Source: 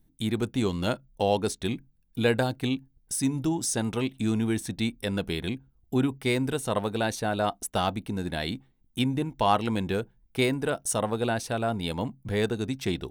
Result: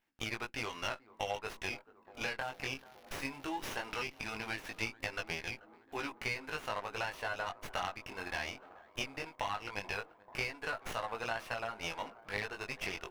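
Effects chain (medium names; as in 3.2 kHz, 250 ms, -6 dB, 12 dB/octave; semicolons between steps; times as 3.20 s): high-pass 920 Hz 12 dB/octave; resonant high shelf 3.3 kHz -7 dB, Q 3; compression 6:1, threshold -36 dBFS, peak gain reduction 15.5 dB; 2.40–4.86 s: crackle 340 per s -50 dBFS; chorus 0.18 Hz, delay 17.5 ms, depth 4.9 ms; bucket-brigade echo 436 ms, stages 4096, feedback 82%, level -18.5 dB; sliding maximum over 5 samples; trim +5.5 dB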